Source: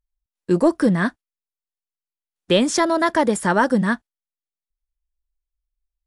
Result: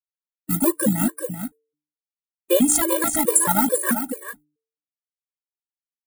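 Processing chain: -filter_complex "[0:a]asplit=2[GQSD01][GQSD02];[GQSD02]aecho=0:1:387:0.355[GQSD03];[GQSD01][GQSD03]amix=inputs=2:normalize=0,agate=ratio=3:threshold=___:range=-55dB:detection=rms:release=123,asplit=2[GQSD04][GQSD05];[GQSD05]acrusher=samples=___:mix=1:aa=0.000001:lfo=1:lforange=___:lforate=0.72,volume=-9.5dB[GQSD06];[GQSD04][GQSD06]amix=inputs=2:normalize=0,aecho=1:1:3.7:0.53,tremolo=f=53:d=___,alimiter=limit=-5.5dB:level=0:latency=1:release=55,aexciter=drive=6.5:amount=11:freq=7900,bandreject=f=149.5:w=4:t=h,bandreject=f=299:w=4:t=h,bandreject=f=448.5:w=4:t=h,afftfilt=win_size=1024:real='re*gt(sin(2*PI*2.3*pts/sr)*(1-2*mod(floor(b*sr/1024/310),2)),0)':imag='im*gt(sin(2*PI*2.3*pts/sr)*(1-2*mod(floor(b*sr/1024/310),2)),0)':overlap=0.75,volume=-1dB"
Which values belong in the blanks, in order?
-37dB, 20, 20, 0.462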